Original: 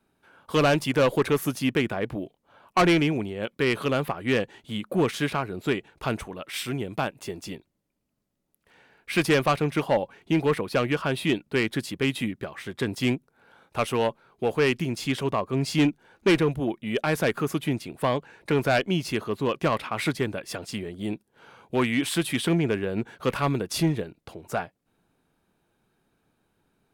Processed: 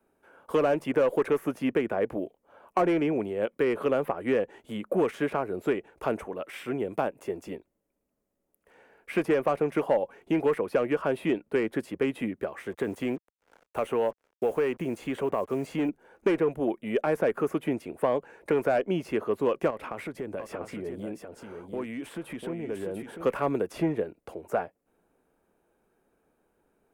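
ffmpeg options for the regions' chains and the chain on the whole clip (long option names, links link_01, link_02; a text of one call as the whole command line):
ffmpeg -i in.wav -filter_complex "[0:a]asettb=1/sr,asplit=3[link_01][link_02][link_03];[link_01]atrim=end=12.724[link_04];[link_02]atrim=start=12.72:end=15.89,asetpts=PTS-STARTPTS,afade=type=in:duration=0.004:curve=qsin,afade=type=out:start_time=3.166:duration=0.004:curve=qsin,bandreject=frequency=5200:width=6.4,acompressor=threshold=-23dB:ratio=6:attack=3.2:release=140:knee=1:detection=peak,acrusher=bits=7:mix=0:aa=0.5[link_05];[link_03]atrim=start=15.886[link_06];[link_04][link_05]acrossfade=duration=0.004:curve1=hsin:curve2=qsin[link_07];[link_07][link_06]acrossfade=duration=0.004:curve1=qsin:curve2=hsin,asettb=1/sr,asplit=3[link_08][link_09][link_10];[link_08]atrim=end=19.704[link_11];[link_09]atrim=start=19.7:end=23.26,asetpts=PTS-STARTPTS,afade=type=in:duration=0.004:curve=qsin,afade=type=out:start_time=3.556:duration=0.004:curve=qsin,lowshelf=frequency=420:gain=5.5,acompressor=threshold=-31dB:ratio=8:attack=3.2:release=140:knee=1:detection=peak,aecho=1:1:695:0.447,atrim=end_sample=156996[link_12];[link_10]atrim=start=23.256[link_13];[link_11][link_12]acrossfade=duration=0.004:curve1=hsin:curve2=qsin[link_14];[link_14][link_13]acrossfade=duration=0.004:curve1=qsin:curve2=hsin,equalizer=frequency=125:width_type=o:width=1:gain=-9,equalizer=frequency=500:width_type=o:width=1:gain=7,equalizer=frequency=4000:width_type=o:width=1:gain=-11,acrossover=split=91|1000|3200[link_15][link_16][link_17][link_18];[link_15]acompressor=threshold=-56dB:ratio=4[link_19];[link_16]acompressor=threshold=-21dB:ratio=4[link_20];[link_17]acompressor=threshold=-34dB:ratio=4[link_21];[link_18]acompressor=threshold=-54dB:ratio=4[link_22];[link_19][link_20][link_21][link_22]amix=inputs=4:normalize=0,volume=-1dB" out.wav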